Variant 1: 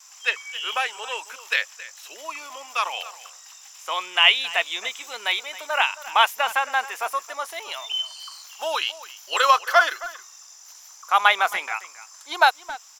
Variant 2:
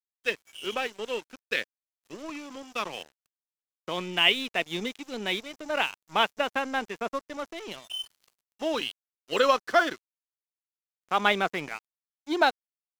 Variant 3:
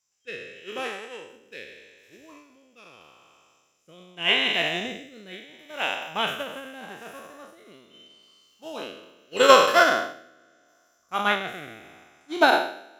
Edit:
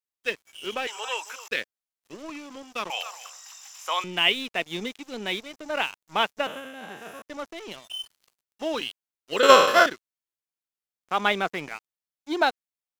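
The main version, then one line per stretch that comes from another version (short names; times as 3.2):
2
0.87–1.48 from 1
2.9–4.04 from 1
6.47–7.22 from 3
9.43–9.86 from 3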